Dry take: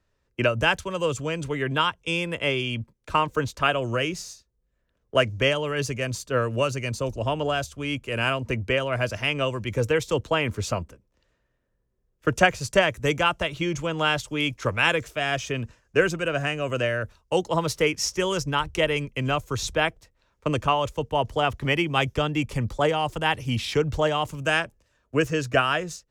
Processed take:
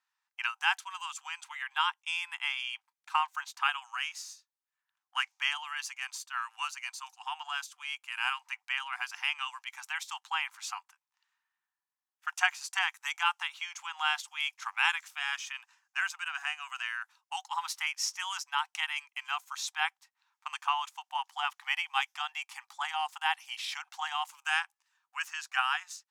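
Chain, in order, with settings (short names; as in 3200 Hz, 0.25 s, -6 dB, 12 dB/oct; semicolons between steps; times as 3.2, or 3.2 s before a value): brick-wall FIR high-pass 740 Hz; gain -5.5 dB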